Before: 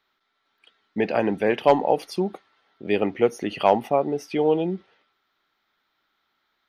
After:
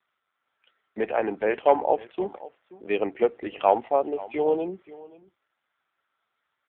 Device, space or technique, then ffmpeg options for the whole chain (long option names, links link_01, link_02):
satellite phone: -filter_complex "[0:a]asplit=3[link_01][link_02][link_03];[link_01]afade=type=out:start_time=1.26:duration=0.02[link_04];[link_02]highshelf=frequency=3300:gain=-2,afade=type=in:start_time=1.26:duration=0.02,afade=type=out:start_time=1.88:duration=0.02[link_05];[link_03]afade=type=in:start_time=1.88:duration=0.02[link_06];[link_04][link_05][link_06]amix=inputs=3:normalize=0,highpass=370,lowpass=3000,aecho=1:1:528:0.119" -ar 8000 -c:a libopencore_amrnb -b:a 5900